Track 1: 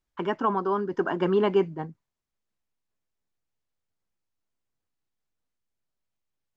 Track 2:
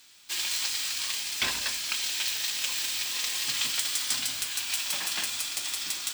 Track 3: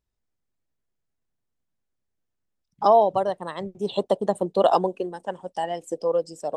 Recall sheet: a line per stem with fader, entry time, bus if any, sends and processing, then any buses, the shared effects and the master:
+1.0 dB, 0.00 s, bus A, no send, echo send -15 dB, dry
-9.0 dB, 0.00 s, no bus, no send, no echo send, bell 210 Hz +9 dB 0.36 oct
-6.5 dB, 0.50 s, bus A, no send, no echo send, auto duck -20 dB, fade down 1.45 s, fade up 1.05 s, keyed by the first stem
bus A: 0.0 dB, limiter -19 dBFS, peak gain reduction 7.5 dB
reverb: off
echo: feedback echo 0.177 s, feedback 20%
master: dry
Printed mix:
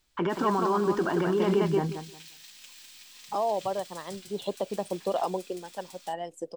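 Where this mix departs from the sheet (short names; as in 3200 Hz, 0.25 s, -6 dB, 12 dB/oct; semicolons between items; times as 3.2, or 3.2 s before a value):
stem 1 +1.0 dB -> +9.0 dB; stem 2 -9.0 dB -> -19.5 dB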